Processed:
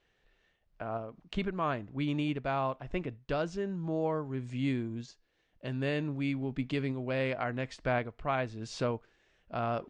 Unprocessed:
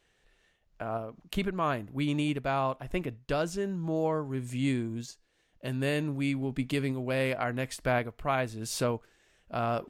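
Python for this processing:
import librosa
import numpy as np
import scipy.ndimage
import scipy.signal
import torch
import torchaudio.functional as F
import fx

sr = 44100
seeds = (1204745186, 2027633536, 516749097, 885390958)

y = scipy.signal.sosfilt(scipy.signal.bessel(6, 4400.0, 'lowpass', norm='mag', fs=sr, output='sos'), x)
y = F.gain(torch.from_numpy(y), -2.5).numpy()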